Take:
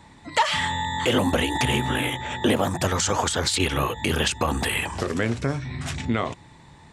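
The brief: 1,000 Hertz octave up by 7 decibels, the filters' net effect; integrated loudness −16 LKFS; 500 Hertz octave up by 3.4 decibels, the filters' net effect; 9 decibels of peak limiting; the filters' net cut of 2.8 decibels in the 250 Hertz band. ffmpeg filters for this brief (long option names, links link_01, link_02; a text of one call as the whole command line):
ffmpeg -i in.wav -af "equalizer=frequency=250:width_type=o:gain=-5,equalizer=frequency=500:width_type=o:gain=3.5,equalizer=frequency=1000:width_type=o:gain=7.5,volume=7.5dB,alimiter=limit=-5dB:level=0:latency=1" out.wav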